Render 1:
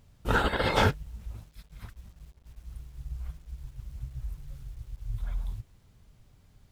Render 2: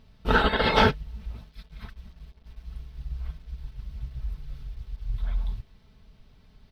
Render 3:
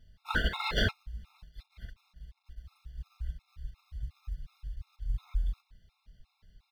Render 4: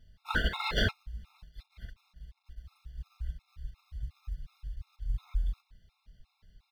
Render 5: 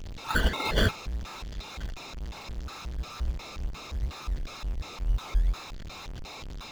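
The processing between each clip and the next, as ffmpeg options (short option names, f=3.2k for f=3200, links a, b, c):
-af "highshelf=f=5.8k:t=q:w=1.5:g=-10,bandreject=f=6.9k:w=13,aecho=1:1:4.6:0.48,volume=3dB"
-filter_complex "[0:a]equalizer=f=350:w=0.61:g=-14,asplit=2[a][b];[b]acrusher=samples=35:mix=1:aa=0.000001,volume=-11dB[c];[a][c]amix=inputs=2:normalize=0,afftfilt=real='re*gt(sin(2*PI*2.8*pts/sr)*(1-2*mod(floor(b*sr/1024/700),2)),0)':imag='im*gt(sin(2*PI*2.8*pts/sr)*(1-2*mod(floor(b*sr/1024/700),2)),0)':win_size=1024:overlap=0.75,volume=-3dB"
-af anull
-filter_complex "[0:a]aeval=exprs='val(0)+0.5*0.0133*sgn(val(0))':c=same,aresample=16000,aresample=44100,asplit=2[a][b];[b]acrusher=samples=21:mix=1:aa=0.000001:lfo=1:lforange=12.6:lforate=2.1,volume=-4dB[c];[a][c]amix=inputs=2:normalize=0"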